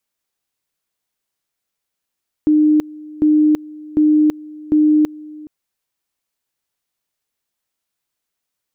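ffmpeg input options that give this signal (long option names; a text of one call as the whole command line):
ffmpeg -f lavfi -i "aevalsrc='pow(10,(-9-22*gte(mod(t,0.75),0.33))/20)*sin(2*PI*304*t)':duration=3:sample_rate=44100" out.wav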